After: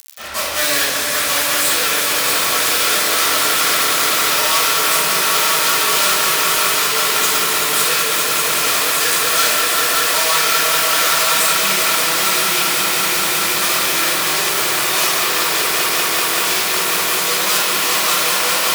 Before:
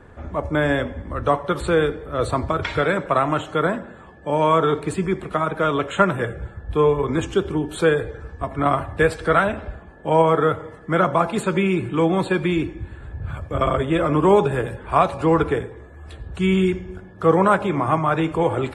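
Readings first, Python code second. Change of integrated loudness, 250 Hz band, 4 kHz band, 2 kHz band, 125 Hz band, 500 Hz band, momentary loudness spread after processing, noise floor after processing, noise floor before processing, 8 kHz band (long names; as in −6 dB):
+7.0 dB, −9.0 dB, +21.5 dB, +11.0 dB, −13.5 dB, −5.0 dB, 2 LU, −18 dBFS, −43 dBFS, +29.5 dB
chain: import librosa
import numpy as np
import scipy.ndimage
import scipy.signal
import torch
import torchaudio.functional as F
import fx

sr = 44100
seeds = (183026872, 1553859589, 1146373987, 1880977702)

p1 = x + fx.echo_swell(x, sr, ms=192, loudest=5, wet_db=-7.5, dry=0)
p2 = fx.fuzz(p1, sr, gain_db=38.0, gate_db=-35.0)
p3 = fx.room_shoebox(p2, sr, seeds[0], volume_m3=550.0, walls='mixed', distance_m=6.3)
p4 = fx.dmg_crackle(p3, sr, seeds[1], per_s=110.0, level_db=-17.0)
p5 = np.diff(p4, prepend=0.0)
y = p5 * librosa.db_to_amplitude(-1.0)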